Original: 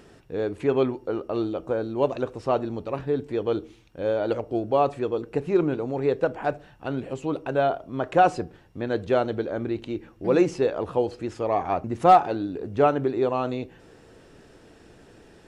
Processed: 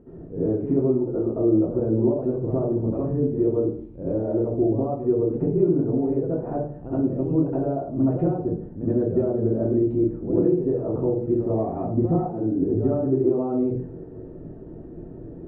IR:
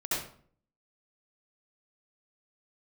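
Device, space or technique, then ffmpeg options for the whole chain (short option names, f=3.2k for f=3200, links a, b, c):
television next door: -filter_complex "[0:a]acompressor=threshold=-30dB:ratio=6,lowpass=390[a];[1:a]atrim=start_sample=2205[b];[a][b]afir=irnorm=-1:irlink=0,volume=6.5dB"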